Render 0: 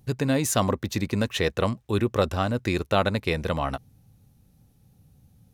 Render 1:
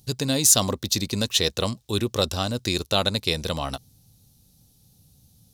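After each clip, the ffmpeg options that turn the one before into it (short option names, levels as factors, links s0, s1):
-af "highshelf=f=2900:t=q:w=1.5:g=12,volume=0.841"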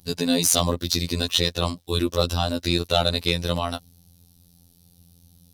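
-af "afftfilt=real='hypot(re,im)*cos(PI*b)':imag='0':win_size=2048:overlap=0.75,equalizer=f=7000:t=o:w=0.45:g=-6.5,acontrast=82,volume=0.891"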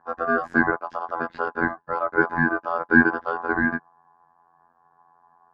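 -af "lowpass=f=690:t=q:w=4.9,aeval=exprs='val(0)*sin(2*PI*930*n/s)':c=same,volume=0.891"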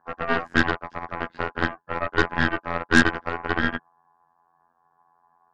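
-af "aeval=exprs='0.891*(cos(1*acos(clip(val(0)/0.891,-1,1)))-cos(1*PI/2))+0.0398*(cos(7*acos(clip(val(0)/0.891,-1,1)))-cos(7*PI/2))+0.126*(cos(8*acos(clip(val(0)/0.891,-1,1)))-cos(8*PI/2))':c=same,volume=0.841"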